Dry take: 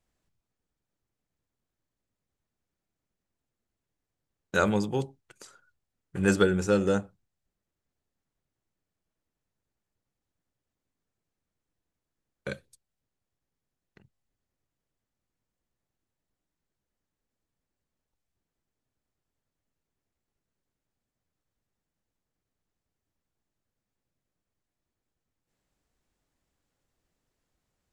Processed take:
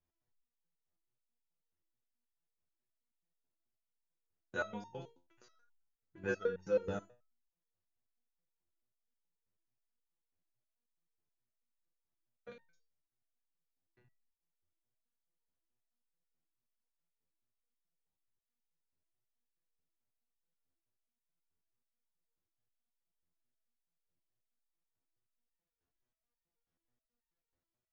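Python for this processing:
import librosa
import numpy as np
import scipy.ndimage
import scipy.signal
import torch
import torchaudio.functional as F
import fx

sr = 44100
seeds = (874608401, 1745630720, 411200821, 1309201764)

y = fx.brickwall_lowpass(x, sr, high_hz=7100.0)
y = fx.high_shelf(y, sr, hz=2800.0, db=-8.0)
y = y + 10.0 ** (-13.0 / 20.0) * np.pad(y, (int(75 * sr / 1000.0), 0))[:len(y)]
y = fx.resonator_held(y, sr, hz=9.3, low_hz=87.0, high_hz=910.0)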